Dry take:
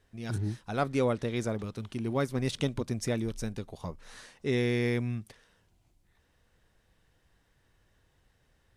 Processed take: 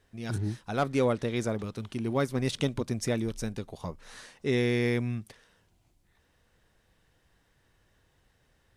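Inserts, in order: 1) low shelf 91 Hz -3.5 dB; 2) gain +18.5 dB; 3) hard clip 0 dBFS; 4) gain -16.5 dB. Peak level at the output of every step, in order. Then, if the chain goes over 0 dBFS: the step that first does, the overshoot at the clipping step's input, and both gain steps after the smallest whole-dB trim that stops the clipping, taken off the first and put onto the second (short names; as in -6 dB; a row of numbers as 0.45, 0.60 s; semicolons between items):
-14.5, +4.0, 0.0, -16.5 dBFS; step 2, 4.0 dB; step 2 +14.5 dB, step 4 -12.5 dB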